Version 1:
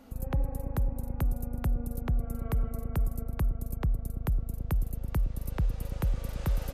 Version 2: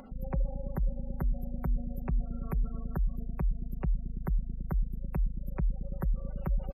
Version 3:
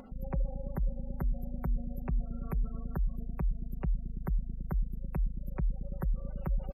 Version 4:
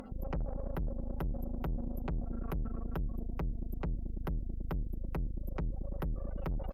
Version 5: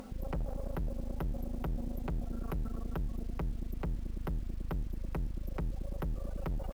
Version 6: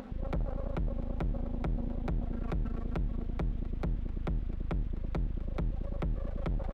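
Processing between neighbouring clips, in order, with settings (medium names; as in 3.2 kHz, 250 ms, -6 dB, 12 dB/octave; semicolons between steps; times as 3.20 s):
spectral gate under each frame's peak -25 dB strong; comb 5.3 ms, depth 69%; upward compressor, threshold -40 dBFS; trim -3 dB
wow and flutter 21 cents; trim -1.5 dB
valve stage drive 38 dB, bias 0.7; trim +6.5 dB
bit crusher 10-bit
resampled via 8 kHz; delay 696 ms -19 dB; sliding maximum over 9 samples; trim +3 dB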